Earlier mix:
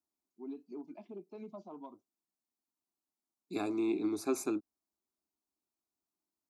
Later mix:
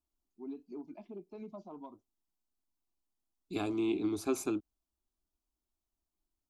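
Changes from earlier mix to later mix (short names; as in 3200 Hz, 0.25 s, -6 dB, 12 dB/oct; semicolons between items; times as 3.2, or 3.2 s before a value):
second voice: remove Butterworth band-stop 3100 Hz, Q 2.9; master: remove HPF 170 Hz 12 dB/oct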